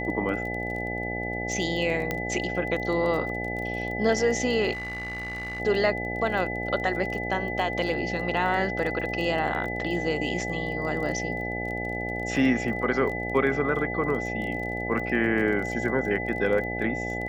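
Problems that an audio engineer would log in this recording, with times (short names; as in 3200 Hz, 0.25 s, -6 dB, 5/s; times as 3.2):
buzz 60 Hz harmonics 14 -33 dBFS
crackle 23/s -33 dBFS
tone 2000 Hz -32 dBFS
2.11 pop -13 dBFS
4.72–5.61 clipped -30.5 dBFS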